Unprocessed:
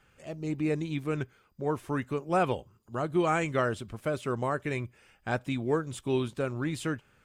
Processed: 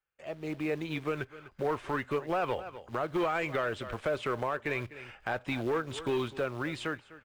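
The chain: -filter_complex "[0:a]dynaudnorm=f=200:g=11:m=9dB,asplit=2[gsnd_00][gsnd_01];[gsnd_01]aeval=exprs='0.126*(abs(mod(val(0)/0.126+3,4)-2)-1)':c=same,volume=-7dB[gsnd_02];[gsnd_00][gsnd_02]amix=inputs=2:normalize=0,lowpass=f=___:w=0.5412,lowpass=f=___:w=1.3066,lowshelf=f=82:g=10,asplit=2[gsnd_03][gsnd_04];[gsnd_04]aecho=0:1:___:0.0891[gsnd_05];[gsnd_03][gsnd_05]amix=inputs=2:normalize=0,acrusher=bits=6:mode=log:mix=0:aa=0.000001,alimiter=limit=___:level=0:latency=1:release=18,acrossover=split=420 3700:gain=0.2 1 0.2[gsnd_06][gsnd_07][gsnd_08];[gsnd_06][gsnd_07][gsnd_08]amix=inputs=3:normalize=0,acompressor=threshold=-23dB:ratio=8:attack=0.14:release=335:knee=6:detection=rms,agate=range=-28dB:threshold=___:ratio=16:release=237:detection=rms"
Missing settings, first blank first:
9200, 9200, 250, -9dB, -57dB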